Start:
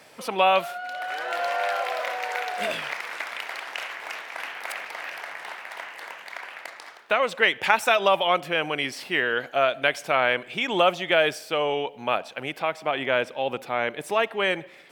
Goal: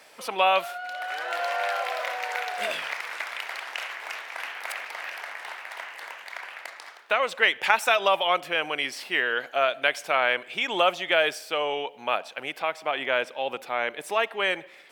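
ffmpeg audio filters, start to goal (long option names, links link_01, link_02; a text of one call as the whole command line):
ffmpeg -i in.wav -af "highpass=frequency=540:poles=1" out.wav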